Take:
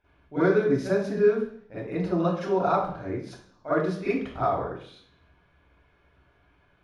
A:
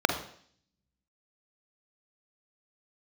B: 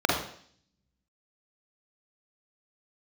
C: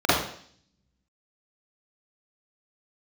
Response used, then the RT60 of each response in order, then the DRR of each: C; 0.55, 0.55, 0.55 seconds; 5.0, −3.0, −12.5 decibels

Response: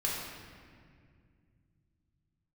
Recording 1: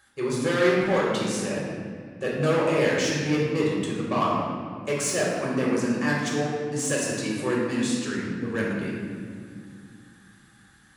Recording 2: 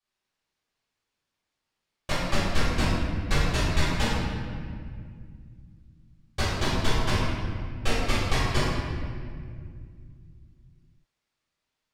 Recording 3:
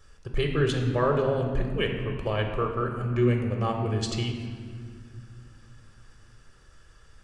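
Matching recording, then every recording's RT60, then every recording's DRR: 1; 2.1, 2.1, 2.1 seconds; −5.0, −12.0, 2.5 decibels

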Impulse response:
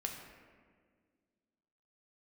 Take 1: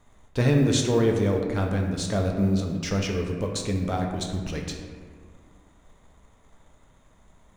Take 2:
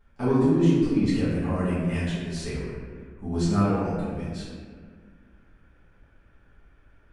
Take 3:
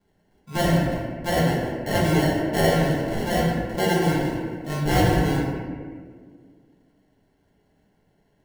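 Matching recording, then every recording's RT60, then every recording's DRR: 1; 1.8, 1.8, 1.8 seconds; 1.0, −12.0, −6.0 decibels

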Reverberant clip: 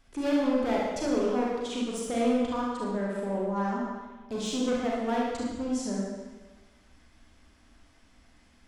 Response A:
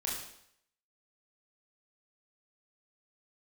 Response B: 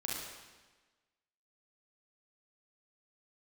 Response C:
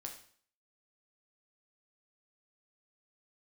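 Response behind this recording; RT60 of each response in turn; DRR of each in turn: B; 0.70, 1.3, 0.50 seconds; −4.5, −4.5, 1.5 decibels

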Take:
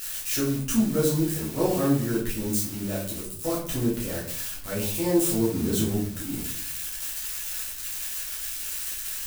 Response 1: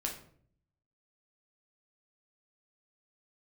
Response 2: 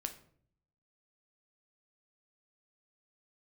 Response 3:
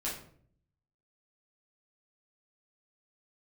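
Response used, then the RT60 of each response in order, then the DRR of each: 3; 0.55, 0.55, 0.55 seconds; −0.5, 6.0, −7.0 decibels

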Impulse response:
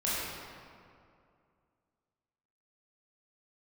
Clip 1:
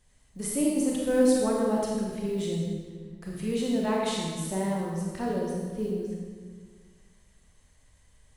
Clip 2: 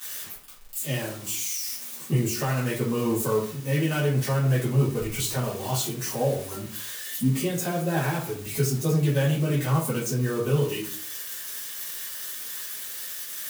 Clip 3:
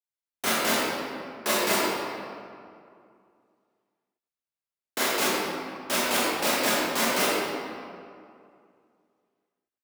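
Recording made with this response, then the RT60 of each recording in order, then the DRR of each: 3; 1.6, 0.45, 2.4 seconds; −3.0, −9.5, −9.5 decibels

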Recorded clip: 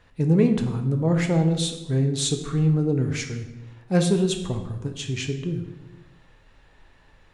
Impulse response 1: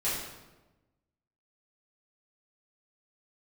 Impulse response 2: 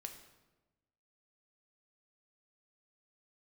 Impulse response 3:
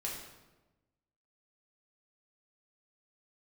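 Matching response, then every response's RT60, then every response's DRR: 2; 1.1, 1.1, 1.1 seconds; −11.5, 4.5, −3.5 decibels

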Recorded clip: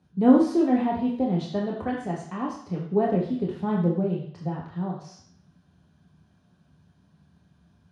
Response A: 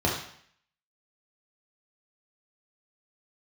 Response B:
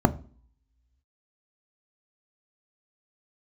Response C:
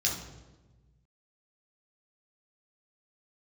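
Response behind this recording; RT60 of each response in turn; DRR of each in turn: A; 0.60, 0.45, 1.2 seconds; −3.0, 10.0, −3.0 decibels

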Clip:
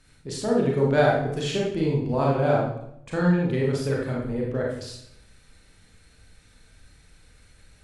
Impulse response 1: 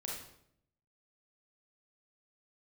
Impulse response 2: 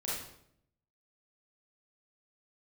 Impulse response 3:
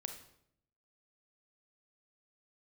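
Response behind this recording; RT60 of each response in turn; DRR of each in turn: 1; 0.70, 0.70, 0.70 seconds; −3.5, −8.0, 5.5 decibels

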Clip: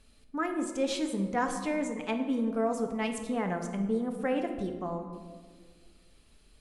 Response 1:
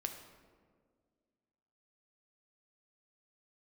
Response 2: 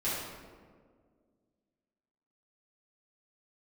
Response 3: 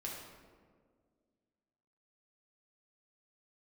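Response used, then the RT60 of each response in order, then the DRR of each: 1; 1.8, 1.8, 1.8 seconds; 4.5, −11.0, −3.5 decibels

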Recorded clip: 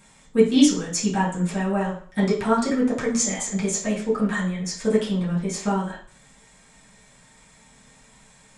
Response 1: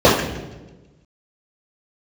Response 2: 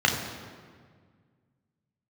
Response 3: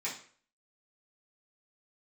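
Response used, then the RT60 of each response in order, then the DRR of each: 3; 1.2, 1.8, 0.50 seconds; −10.0, 0.0, −9.0 decibels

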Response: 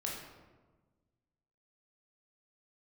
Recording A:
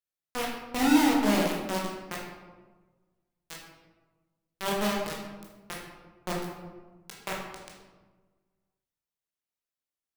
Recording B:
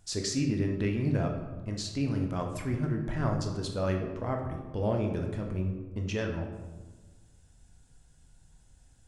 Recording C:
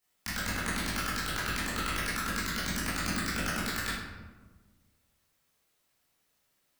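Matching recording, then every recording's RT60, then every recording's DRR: A; 1.3, 1.3, 1.3 seconds; −3.0, 2.0, −10.5 decibels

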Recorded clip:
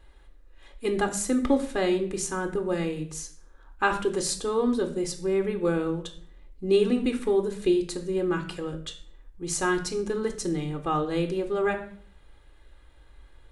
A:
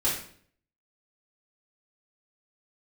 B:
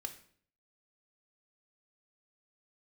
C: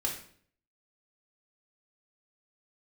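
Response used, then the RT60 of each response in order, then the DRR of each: B; 0.55, 0.55, 0.55 seconds; −8.5, 6.5, −1.0 decibels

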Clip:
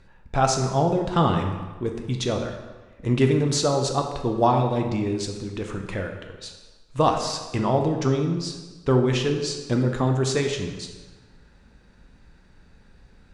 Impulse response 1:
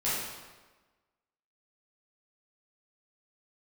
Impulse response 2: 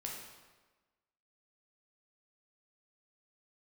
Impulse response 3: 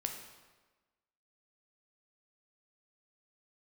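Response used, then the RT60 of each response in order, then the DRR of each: 3; 1.3, 1.3, 1.3 seconds; −10.5, −2.0, 3.0 decibels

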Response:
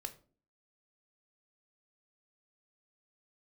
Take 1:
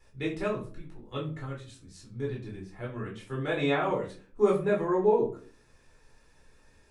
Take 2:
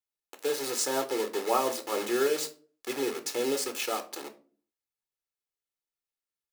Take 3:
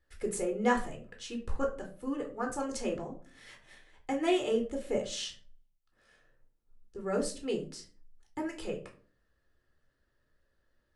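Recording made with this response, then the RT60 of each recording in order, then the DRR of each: 2; 0.40, 0.45, 0.40 seconds; −4.0, 7.5, 2.0 decibels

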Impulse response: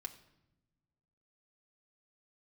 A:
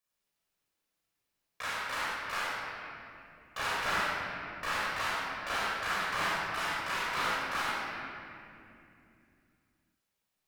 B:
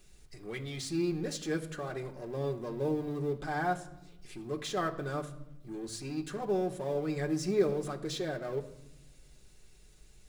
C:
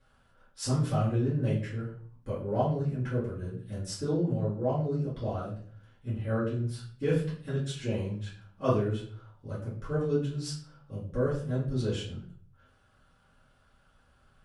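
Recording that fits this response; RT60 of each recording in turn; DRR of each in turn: B; 2.7, 0.90, 0.45 seconds; −7.5, 2.0, −10.0 decibels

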